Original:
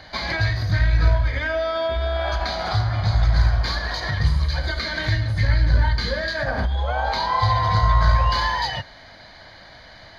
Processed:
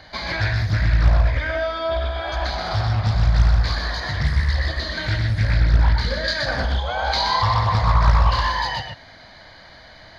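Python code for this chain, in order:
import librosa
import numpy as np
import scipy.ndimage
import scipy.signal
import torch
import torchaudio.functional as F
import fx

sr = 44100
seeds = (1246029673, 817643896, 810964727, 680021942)

y = fx.spec_repair(x, sr, seeds[0], start_s=4.26, length_s=0.66, low_hz=880.0, high_hz=2500.0, source='before')
y = fx.peak_eq(y, sr, hz=5800.0, db=9.0, octaves=2.4, at=(6.24, 7.42))
y = y + 10.0 ** (-4.0 / 20.0) * np.pad(y, (int(125 * sr / 1000.0), 0))[:len(y)]
y = fx.doppler_dist(y, sr, depth_ms=0.71)
y = y * librosa.db_to_amplitude(-1.5)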